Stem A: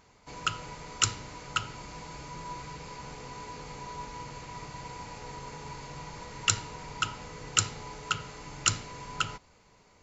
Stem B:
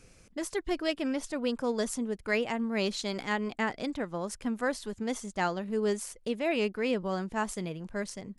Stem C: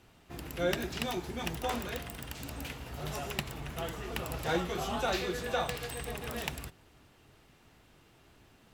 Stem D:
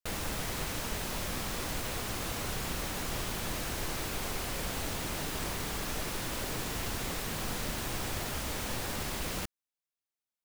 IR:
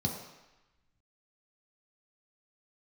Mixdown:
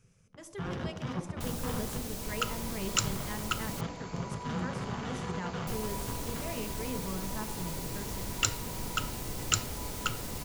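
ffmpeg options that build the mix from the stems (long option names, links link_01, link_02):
-filter_complex "[0:a]adelay=1950,volume=-3dB[link_01];[1:a]volume=-10.5dB,asplit=2[link_02][link_03];[link_03]volume=-12.5dB[link_04];[2:a]lowpass=2100,alimiter=level_in=5dB:limit=-24dB:level=0:latency=1:release=15,volume=-5dB,acrusher=bits=4:mix=0:aa=0.5,volume=1dB,asplit=2[link_05][link_06];[link_06]volume=-6dB[link_07];[3:a]equalizer=frequency=1700:width=0.54:gain=-11.5,adelay=1350,volume=-1dB,asplit=3[link_08][link_09][link_10];[link_08]atrim=end=3.81,asetpts=PTS-STARTPTS,afade=type=out:start_time=3.806:duration=0.004:curve=hsin[link_11];[link_09]atrim=start=3.81:end=5.67,asetpts=PTS-STARTPTS,volume=0[link_12];[link_10]atrim=start=5.67,asetpts=PTS-STARTPTS,afade=type=in:duration=0.004:curve=hsin[link_13];[link_11][link_12][link_13]concat=n=3:v=0:a=1[link_14];[4:a]atrim=start_sample=2205[link_15];[link_04][link_07]amix=inputs=2:normalize=0[link_16];[link_16][link_15]afir=irnorm=-1:irlink=0[link_17];[link_01][link_02][link_05][link_14][link_17]amix=inputs=5:normalize=0"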